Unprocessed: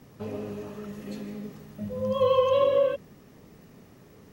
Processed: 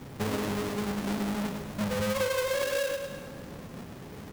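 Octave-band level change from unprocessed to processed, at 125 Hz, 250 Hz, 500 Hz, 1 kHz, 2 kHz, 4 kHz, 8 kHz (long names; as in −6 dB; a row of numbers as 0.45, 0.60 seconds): +3.5 dB, +4.5 dB, −6.0 dB, −4.0 dB, +11.0 dB, +4.0 dB, can't be measured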